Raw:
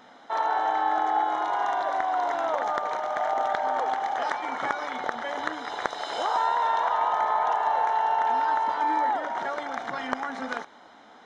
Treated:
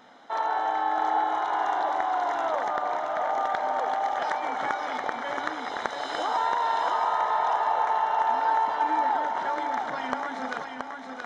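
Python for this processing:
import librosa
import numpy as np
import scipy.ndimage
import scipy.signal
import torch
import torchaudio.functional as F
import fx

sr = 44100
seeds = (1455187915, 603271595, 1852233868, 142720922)

p1 = fx.high_shelf(x, sr, hz=5500.0, db=-10.5, at=(2.68, 3.34))
p2 = p1 + fx.echo_feedback(p1, sr, ms=675, feedback_pct=33, wet_db=-5.0, dry=0)
y = p2 * 10.0 ** (-1.5 / 20.0)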